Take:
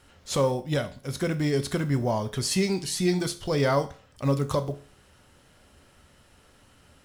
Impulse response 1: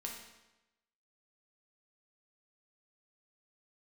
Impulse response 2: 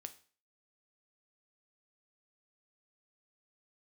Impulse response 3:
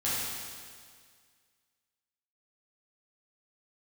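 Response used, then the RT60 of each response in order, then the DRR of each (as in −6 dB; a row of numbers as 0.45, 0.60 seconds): 2; 1.0, 0.40, 1.9 seconds; −1.0, 8.5, −10.0 decibels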